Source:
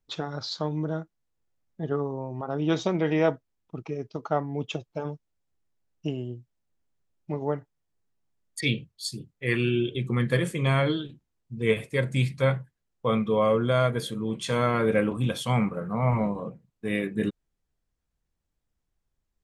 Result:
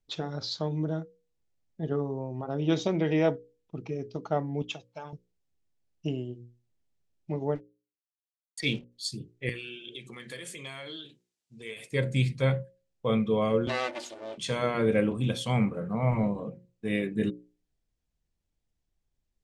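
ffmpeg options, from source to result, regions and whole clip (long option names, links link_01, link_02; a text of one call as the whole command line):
ffmpeg -i in.wav -filter_complex "[0:a]asettb=1/sr,asplit=3[link_01][link_02][link_03];[link_01]atrim=end=4.624[link_04];[link_02]atrim=start=4.62:end=5.13,asetpts=PTS-STARTPTS,afade=type=in:duration=0.004:curve=qsin,afade=type=out:start_time=0.506:duration=0.004:curve=qsin,highpass=63,lowshelf=frequency=600:width_type=q:width=1.5:gain=-12[link_05];[link_03]atrim=start=5.126[link_06];[link_04][link_05]acrossfade=duration=0.004:curve1=hsin:curve2=qsin[link_07];[link_07][link_06]acrossfade=duration=0.004:curve1=qsin:curve2=hsin,asettb=1/sr,asplit=3[link_08][link_09][link_10];[link_08]atrim=end=7.554[link_11];[link_09]atrim=start=7.55:end=8.92,asetpts=PTS-STARTPTS,afade=type=in:duration=0.004:curve=qsin,afade=type=out:start_time=1.366:duration=0.004:curve=qsin,equalizer=frequency=96:width=1.6:gain=-8,aeval=exprs='sgn(val(0))*max(abs(val(0))-0.00447,0)':channel_layout=same[link_12];[link_10]atrim=start=8.916[link_13];[link_11][link_12]acrossfade=duration=0.004:curve1=hsin:curve2=qsin[link_14];[link_14][link_13]acrossfade=duration=0.004:curve1=qsin:curve2=hsin,asettb=1/sr,asplit=3[link_15][link_16][link_17];[link_15]atrim=end=9.494[link_18];[link_16]atrim=start=9.49:end=11.91,asetpts=PTS-STARTPTS,afade=type=in:duration=0.004:curve=qsin,afade=type=out:start_time=2.416:duration=0.004:curve=qsin,highpass=frequency=790:poles=1,acompressor=threshold=-41dB:ratio=2.5:attack=3.2:release=140:knee=1:detection=peak,highshelf=frequency=3400:gain=9[link_19];[link_17]atrim=start=11.906[link_20];[link_18][link_19]acrossfade=duration=0.004:curve1=hsin:curve2=qsin[link_21];[link_21][link_20]acrossfade=duration=0.004:curve1=qsin:curve2=hsin,asettb=1/sr,asplit=3[link_22][link_23][link_24];[link_22]atrim=end=13.674[link_25];[link_23]atrim=start=13.67:end=14.38,asetpts=PTS-STARTPTS,afade=type=in:duration=0.004:curve=qsin,afade=type=out:start_time=0.706:duration=0.004:curve=qsin,aeval=exprs='abs(val(0))':channel_layout=same,highpass=470,lowpass=8000,aecho=1:1:3.4:0.43,atrim=end_sample=31311[link_26];[link_24]atrim=start=14.376[link_27];[link_25][link_26]acrossfade=duration=0.004:curve1=hsin:curve2=qsin[link_28];[link_28][link_27]acrossfade=duration=0.004:curve1=qsin:curve2=hsin,lowpass=8500,equalizer=frequency=1200:width_type=o:width=1.2:gain=-7,bandreject=frequency=60:width_type=h:width=6,bandreject=frequency=120:width_type=h:width=6,bandreject=frequency=180:width_type=h:width=6,bandreject=frequency=240:width_type=h:width=6,bandreject=frequency=300:width_type=h:width=6,bandreject=frequency=360:width_type=h:width=6,bandreject=frequency=420:width_type=h:width=6,bandreject=frequency=480:width_type=h:width=6,bandreject=frequency=540:width_type=h:width=6" out.wav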